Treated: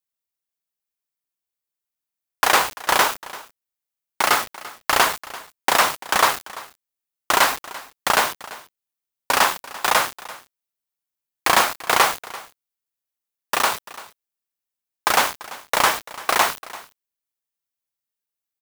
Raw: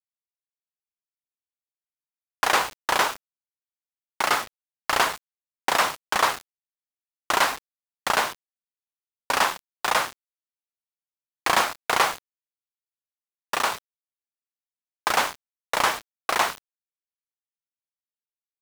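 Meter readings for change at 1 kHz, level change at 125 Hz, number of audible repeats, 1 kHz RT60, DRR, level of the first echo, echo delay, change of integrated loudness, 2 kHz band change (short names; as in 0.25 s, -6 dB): +4.0 dB, +4.0 dB, 1, none, none, -18.5 dB, 0.34 s, +4.5 dB, +4.0 dB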